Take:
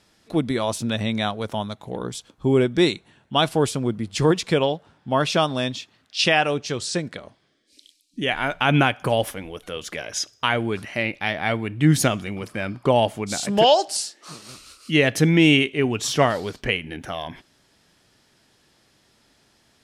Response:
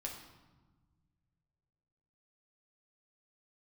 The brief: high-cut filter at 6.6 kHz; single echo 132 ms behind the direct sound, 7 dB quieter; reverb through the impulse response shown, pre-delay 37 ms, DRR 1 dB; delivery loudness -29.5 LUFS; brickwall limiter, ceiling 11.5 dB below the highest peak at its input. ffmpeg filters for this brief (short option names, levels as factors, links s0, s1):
-filter_complex "[0:a]lowpass=6600,alimiter=limit=0.141:level=0:latency=1,aecho=1:1:132:0.447,asplit=2[s0][s1];[1:a]atrim=start_sample=2205,adelay=37[s2];[s1][s2]afir=irnorm=-1:irlink=0,volume=1.06[s3];[s0][s3]amix=inputs=2:normalize=0,volume=0.596"